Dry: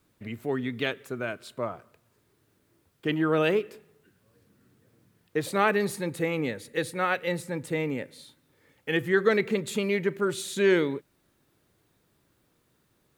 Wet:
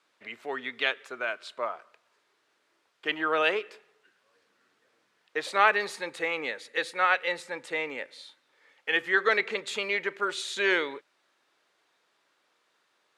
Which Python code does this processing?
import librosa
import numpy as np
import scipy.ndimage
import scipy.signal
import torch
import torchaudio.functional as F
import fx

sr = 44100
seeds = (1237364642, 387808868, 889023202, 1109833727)

y = fx.bandpass_edges(x, sr, low_hz=760.0, high_hz=5300.0)
y = F.gain(torch.from_numpy(y), 4.5).numpy()